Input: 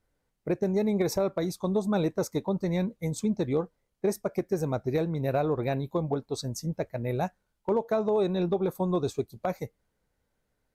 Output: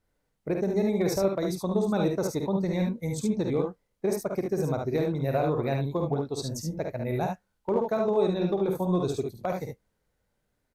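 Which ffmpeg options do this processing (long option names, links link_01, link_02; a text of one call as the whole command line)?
ffmpeg -i in.wav -af "aecho=1:1:51|72:0.501|0.596,volume=-1dB" out.wav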